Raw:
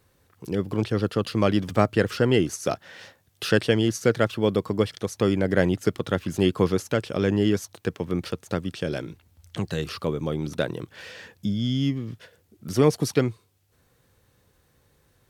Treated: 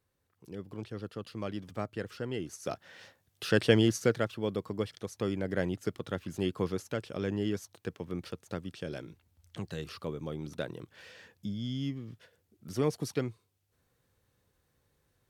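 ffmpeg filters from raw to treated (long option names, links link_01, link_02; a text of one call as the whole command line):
ffmpeg -i in.wav -af "volume=-1.5dB,afade=type=in:start_time=2.39:duration=0.49:silence=0.398107,afade=type=in:start_time=3.47:duration=0.27:silence=0.473151,afade=type=out:start_time=3.74:duration=0.54:silence=0.354813" out.wav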